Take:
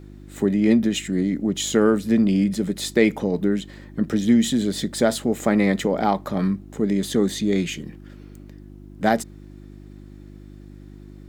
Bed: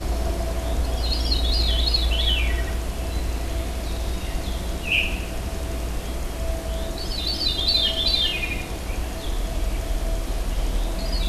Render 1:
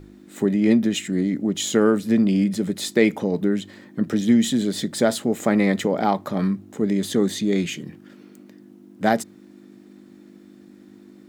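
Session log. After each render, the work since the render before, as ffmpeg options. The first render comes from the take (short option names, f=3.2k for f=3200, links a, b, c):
-af "bandreject=f=50:t=h:w=4,bandreject=f=100:t=h:w=4,bandreject=f=150:t=h:w=4"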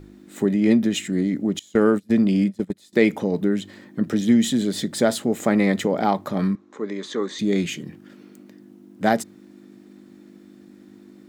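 -filter_complex "[0:a]asettb=1/sr,asplit=3[a][b][c];[a]atrim=end=1.594[d];[b]atrim=start=1.59:end=2.93,asetpts=PTS-STARTPTS,afade=t=in:d=0.004:c=qsin,afade=t=out:st=1.336:d=0.004:c=qsin,agate=range=-24dB:threshold=-23dB:ratio=16:release=100:detection=peak[e];[c]atrim=start=2.926[f];[d][e]acrossfade=d=0.004:c1=hsin:c2=qsin[g];[g][f]acrossfade=d=0.004:c1=qsin:c2=hsin,asettb=1/sr,asplit=3[h][i][j];[h]atrim=end=6.554[k];[i]atrim=start=6.55:end=7.39,asetpts=PTS-STARTPTS,afade=t=in:d=0.004:c=qsin,afade=t=out:st=0.836:d=0.004:c=qsin,highpass=410,equalizer=f=700:t=q:w=4:g=-8,equalizer=f=1.1k:t=q:w=4:g=8,equalizer=f=2.9k:t=q:w=4:g=-7,equalizer=f=4.9k:t=q:w=4:g=-6,lowpass=f=5.9k:w=0.5412,lowpass=f=5.9k:w=1.3066[l];[j]atrim=start=7.386[m];[k][l]acrossfade=d=0.004:c1=hsin:c2=qsin[n];[n][m]acrossfade=d=0.004:c1=qsin:c2=hsin"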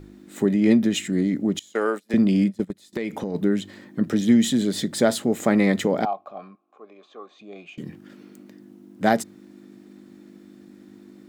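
-filter_complex "[0:a]asettb=1/sr,asplit=3[a][b][c];[a]atrim=end=1.734[d];[b]atrim=start=1.73:end=2.14,asetpts=PTS-STARTPTS,afade=t=in:d=0.004:c=qsin,afade=t=out:st=0.406:d=0.004:c=qsin,highpass=540[e];[c]atrim=start=2.136[f];[d][e]acrossfade=d=0.004:c1=hsin:c2=qsin[g];[g][f]acrossfade=d=0.004:c1=qsin:c2=hsin,asplit=3[h][i][j];[h]afade=t=out:st=2.67:d=0.02[k];[i]acompressor=threshold=-23dB:ratio=8:attack=3.2:release=140:knee=1:detection=peak,afade=t=in:st=2.67:d=0.02,afade=t=out:st=3.34:d=0.02[l];[j]afade=t=in:st=3.34:d=0.02[m];[k][l][m]amix=inputs=3:normalize=0,asettb=1/sr,asplit=3[n][o][p];[n]atrim=end=6.054[q];[o]atrim=start=6.05:end=7.78,asetpts=PTS-STARTPTS,afade=t=in:d=0.004:c=qsin,afade=t=out:st=1.726:d=0.004:c=qsin,asplit=3[r][s][t];[r]bandpass=f=730:t=q:w=8,volume=0dB[u];[s]bandpass=f=1.09k:t=q:w=8,volume=-6dB[v];[t]bandpass=f=2.44k:t=q:w=8,volume=-9dB[w];[u][v][w]amix=inputs=3:normalize=0[x];[p]atrim=start=7.776[y];[q][x]acrossfade=d=0.004:c1=hsin:c2=qsin[z];[z][y]acrossfade=d=0.004:c1=qsin:c2=hsin"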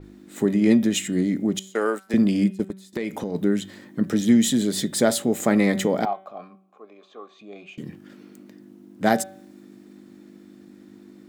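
-af "bandreject=f=191.1:t=h:w=4,bandreject=f=382.2:t=h:w=4,bandreject=f=573.3:t=h:w=4,bandreject=f=764.4:t=h:w=4,bandreject=f=955.5:t=h:w=4,bandreject=f=1.1466k:t=h:w=4,bandreject=f=1.3377k:t=h:w=4,bandreject=f=1.5288k:t=h:w=4,bandreject=f=1.7199k:t=h:w=4,bandreject=f=1.911k:t=h:w=4,bandreject=f=2.1021k:t=h:w=4,bandreject=f=2.2932k:t=h:w=4,bandreject=f=2.4843k:t=h:w=4,bandreject=f=2.6754k:t=h:w=4,bandreject=f=2.8665k:t=h:w=4,bandreject=f=3.0576k:t=h:w=4,bandreject=f=3.2487k:t=h:w=4,bandreject=f=3.4398k:t=h:w=4,bandreject=f=3.6309k:t=h:w=4,bandreject=f=3.822k:t=h:w=4,adynamicequalizer=threshold=0.00501:dfrequency=5700:dqfactor=0.7:tfrequency=5700:tqfactor=0.7:attack=5:release=100:ratio=0.375:range=3:mode=boostabove:tftype=highshelf"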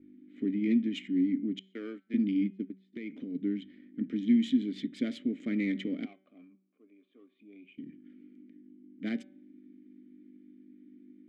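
-filter_complex "[0:a]adynamicsmooth=sensitivity=3.5:basefreq=2.2k,asplit=3[a][b][c];[a]bandpass=f=270:t=q:w=8,volume=0dB[d];[b]bandpass=f=2.29k:t=q:w=8,volume=-6dB[e];[c]bandpass=f=3.01k:t=q:w=8,volume=-9dB[f];[d][e][f]amix=inputs=3:normalize=0"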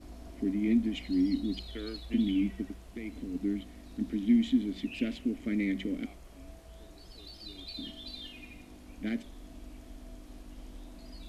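-filter_complex "[1:a]volume=-23.5dB[a];[0:a][a]amix=inputs=2:normalize=0"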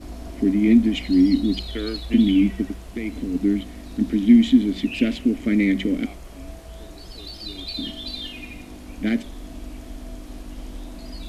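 -af "volume=11.5dB"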